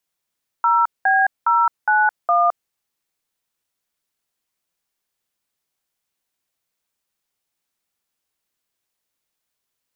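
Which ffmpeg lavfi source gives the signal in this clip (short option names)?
-f lavfi -i "aevalsrc='0.168*clip(min(mod(t,0.412),0.215-mod(t,0.412))/0.002,0,1)*(eq(floor(t/0.412),0)*(sin(2*PI*941*mod(t,0.412))+sin(2*PI*1336*mod(t,0.412)))+eq(floor(t/0.412),1)*(sin(2*PI*770*mod(t,0.412))+sin(2*PI*1633*mod(t,0.412)))+eq(floor(t/0.412),2)*(sin(2*PI*941*mod(t,0.412))+sin(2*PI*1336*mod(t,0.412)))+eq(floor(t/0.412),3)*(sin(2*PI*852*mod(t,0.412))+sin(2*PI*1477*mod(t,0.412)))+eq(floor(t/0.412),4)*(sin(2*PI*697*mod(t,0.412))+sin(2*PI*1209*mod(t,0.412))))':d=2.06:s=44100"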